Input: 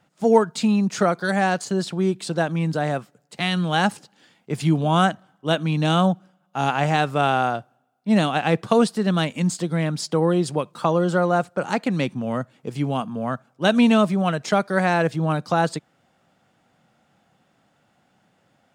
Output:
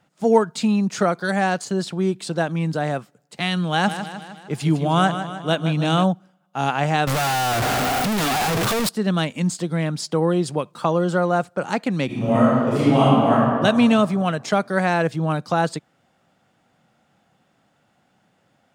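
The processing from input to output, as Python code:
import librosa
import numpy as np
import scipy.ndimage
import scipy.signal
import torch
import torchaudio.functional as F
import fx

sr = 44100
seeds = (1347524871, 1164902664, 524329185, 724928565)

y = fx.echo_feedback(x, sr, ms=154, feedback_pct=56, wet_db=-10.0, at=(3.86, 6.03), fade=0.02)
y = fx.clip_1bit(y, sr, at=(7.07, 8.89))
y = fx.reverb_throw(y, sr, start_s=12.06, length_s=1.26, rt60_s=2.1, drr_db=-10.5)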